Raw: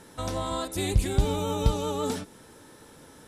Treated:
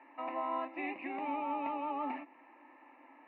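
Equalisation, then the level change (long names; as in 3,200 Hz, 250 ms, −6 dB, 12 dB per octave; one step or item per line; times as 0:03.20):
Chebyshev band-pass filter 270–2,800 Hz, order 5
phaser with its sweep stopped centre 2,200 Hz, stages 8
0.0 dB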